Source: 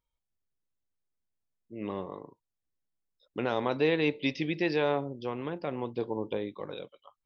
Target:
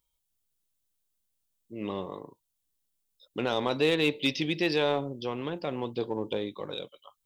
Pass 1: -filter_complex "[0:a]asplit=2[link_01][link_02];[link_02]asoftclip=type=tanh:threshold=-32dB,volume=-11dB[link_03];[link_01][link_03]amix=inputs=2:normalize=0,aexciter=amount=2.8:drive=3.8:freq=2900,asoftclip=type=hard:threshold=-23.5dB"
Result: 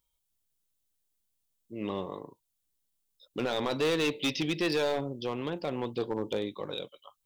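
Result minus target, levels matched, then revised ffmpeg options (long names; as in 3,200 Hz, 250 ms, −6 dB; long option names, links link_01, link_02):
hard clipping: distortion +18 dB
-filter_complex "[0:a]asplit=2[link_01][link_02];[link_02]asoftclip=type=tanh:threshold=-32dB,volume=-11dB[link_03];[link_01][link_03]amix=inputs=2:normalize=0,aexciter=amount=2.8:drive=3.8:freq=2900,asoftclip=type=hard:threshold=-15dB"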